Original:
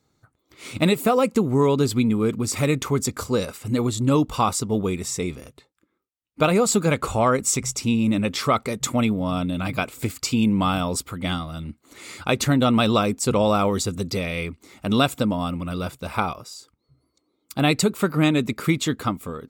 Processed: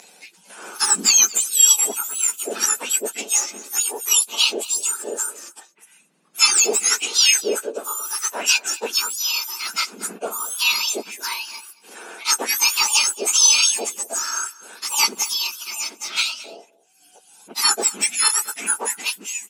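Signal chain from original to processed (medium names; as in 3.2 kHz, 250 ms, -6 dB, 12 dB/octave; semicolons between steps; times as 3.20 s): spectrum inverted on a logarithmic axis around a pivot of 1.8 kHz; dynamic bell 200 Hz, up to +5 dB, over -39 dBFS, Q 1; upward compressor, threshold -32 dBFS; frequency weighting ITU-R 468; delay 226 ms -20.5 dB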